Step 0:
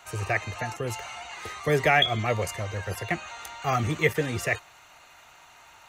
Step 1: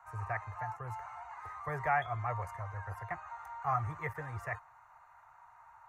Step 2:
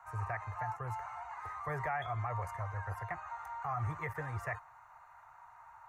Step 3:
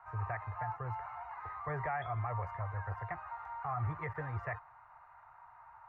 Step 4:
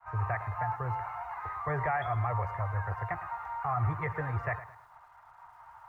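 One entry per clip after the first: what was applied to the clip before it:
FFT filter 130 Hz 0 dB, 220 Hz -20 dB, 540 Hz -9 dB, 950 Hz +9 dB, 1.9 kHz -4 dB, 3.1 kHz -24 dB, 4.9 kHz -19 dB, 12 kHz -14 dB; trim -8.5 dB
peak limiter -30 dBFS, peak gain reduction 9.5 dB; trim +2 dB
distance through air 320 m; trim +1 dB
expander -53 dBFS; bit-crushed delay 108 ms, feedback 35%, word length 11-bit, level -15 dB; trim +6 dB

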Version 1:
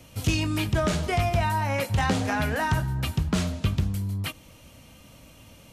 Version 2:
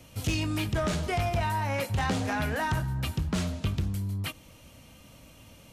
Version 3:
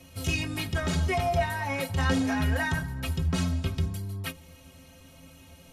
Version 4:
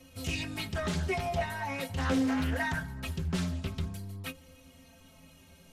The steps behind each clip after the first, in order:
saturation -19 dBFS, distortion -18 dB; trim -2 dB
inharmonic resonator 79 Hz, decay 0.27 s, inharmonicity 0.03; trim +9 dB
flange 0.45 Hz, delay 3.8 ms, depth 1.3 ms, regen +46%; loudspeaker Doppler distortion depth 0.27 ms

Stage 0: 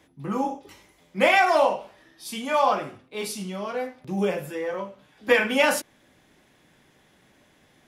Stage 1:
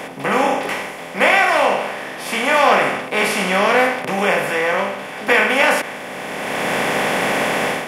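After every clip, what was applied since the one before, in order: spectral levelling over time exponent 0.4; dynamic bell 1.8 kHz, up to +6 dB, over -32 dBFS, Q 0.83; level rider gain up to 11.5 dB; trim -1 dB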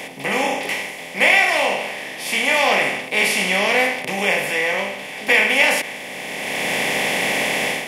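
FFT filter 860 Hz 0 dB, 1.4 kHz -9 dB, 2 kHz +7 dB; trim -4.5 dB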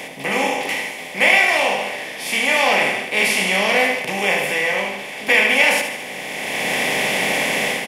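feedback delay 74 ms, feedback 52%, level -8.5 dB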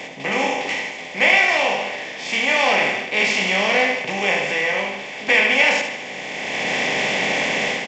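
trim -1 dB; G.722 64 kbps 16 kHz

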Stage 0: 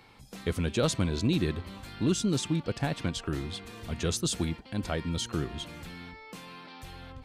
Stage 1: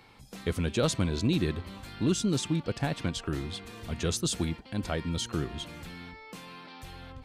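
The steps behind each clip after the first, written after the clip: no audible change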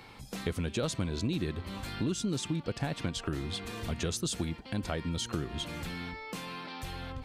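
compression 3:1, threshold -37 dBFS, peak gain reduction 11.5 dB; trim +5 dB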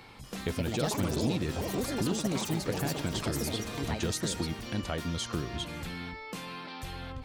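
ever faster or slower copies 239 ms, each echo +5 st, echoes 3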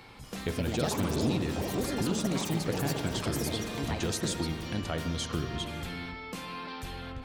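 spring tank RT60 2.3 s, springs 50 ms, chirp 40 ms, DRR 7 dB

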